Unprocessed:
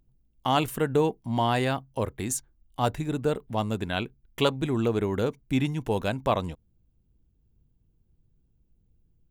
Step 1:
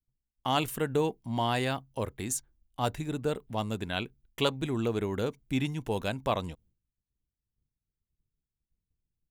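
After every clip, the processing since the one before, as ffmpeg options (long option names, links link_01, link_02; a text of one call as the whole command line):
ffmpeg -i in.wav -af "agate=range=-33dB:threshold=-53dB:ratio=3:detection=peak,adynamicequalizer=threshold=0.0158:dfrequency=2000:dqfactor=0.7:tfrequency=2000:tqfactor=0.7:attack=5:release=100:ratio=0.375:range=2:mode=boostabove:tftype=highshelf,volume=-4.5dB" out.wav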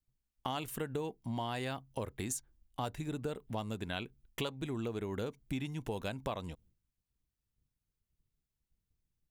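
ffmpeg -i in.wav -af "acompressor=threshold=-36dB:ratio=5,volume=1dB" out.wav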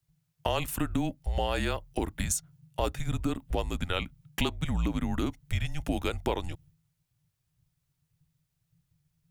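ffmpeg -i in.wav -af "afreqshift=-170,volume=8.5dB" out.wav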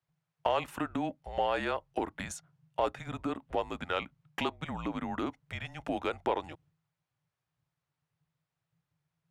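ffmpeg -i in.wav -filter_complex "[0:a]bandpass=frequency=900:width_type=q:width=0.71:csg=0,asplit=2[link_01][link_02];[link_02]asoftclip=type=tanh:threshold=-25dB,volume=-7dB[link_03];[link_01][link_03]amix=inputs=2:normalize=0" out.wav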